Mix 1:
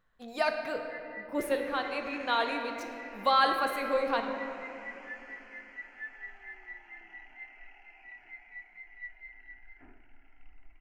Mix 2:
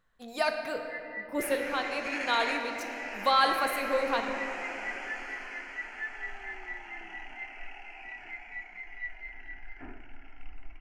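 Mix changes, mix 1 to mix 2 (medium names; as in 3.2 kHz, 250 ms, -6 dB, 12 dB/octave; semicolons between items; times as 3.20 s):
first sound +4.0 dB; second sound +11.0 dB; master: add peaking EQ 11 kHz +7.5 dB 1.7 oct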